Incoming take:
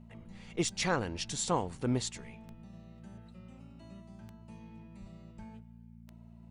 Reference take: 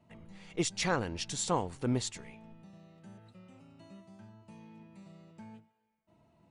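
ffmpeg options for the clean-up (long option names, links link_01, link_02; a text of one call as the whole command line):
ffmpeg -i in.wav -filter_complex "[0:a]adeclick=threshold=4,bandreject=frequency=57.3:width_type=h:width=4,bandreject=frequency=114.6:width_type=h:width=4,bandreject=frequency=171.9:width_type=h:width=4,bandreject=frequency=229.2:width_type=h:width=4,asplit=3[link_01][link_02][link_03];[link_01]afade=type=out:start_time=5:duration=0.02[link_04];[link_02]highpass=frequency=140:width=0.5412,highpass=frequency=140:width=1.3066,afade=type=in:start_time=5:duration=0.02,afade=type=out:start_time=5.12:duration=0.02[link_05];[link_03]afade=type=in:start_time=5.12:duration=0.02[link_06];[link_04][link_05][link_06]amix=inputs=3:normalize=0,asplit=3[link_07][link_08][link_09];[link_07]afade=type=out:start_time=5.37:duration=0.02[link_10];[link_08]highpass=frequency=140:width=0.5412,highpass=frequency=140:width=1.3066,afade=type=in:start_time=5.37:duration=0.02,afade=type=out:start_time=5.49:duration=0.02[link_11];[link_09]afade=type=in:start_time=5.49:duration=0.02[link_12];[link_10][link_11][link_12]amix=inputs=3:normalize=0" out.wav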